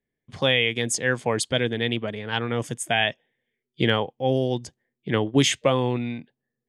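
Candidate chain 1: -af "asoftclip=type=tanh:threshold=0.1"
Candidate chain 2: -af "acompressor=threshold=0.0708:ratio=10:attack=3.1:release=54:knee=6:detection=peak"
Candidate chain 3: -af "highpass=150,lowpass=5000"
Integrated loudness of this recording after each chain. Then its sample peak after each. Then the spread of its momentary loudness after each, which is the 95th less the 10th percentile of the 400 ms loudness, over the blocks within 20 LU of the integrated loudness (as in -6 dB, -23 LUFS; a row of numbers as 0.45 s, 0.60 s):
-28.0 LUFS, -29.5 LUFS, -25.0 LUFS; -20.0 dBFS, -12.0 dBFS, -7.5 dBFS; 9 LU, 7 LU, 9 LU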